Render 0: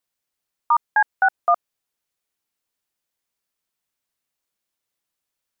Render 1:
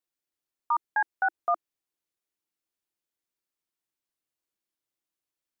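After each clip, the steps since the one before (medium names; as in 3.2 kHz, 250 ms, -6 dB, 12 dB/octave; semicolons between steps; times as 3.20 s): peaking EQ 330 Hz +8.5 dB 0.45 oct; trim -8.5 dB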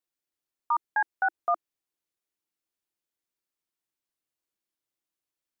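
no audible change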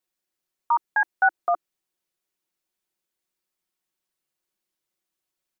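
comb 5.4 ms, depth 51%; trim +4 dB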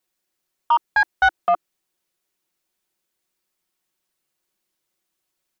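saturation -15 dBFS, distortion -16 dB; trim +6 dB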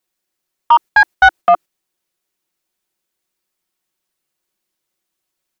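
gate -31 dBFS, range -7 dB; trim +8 dB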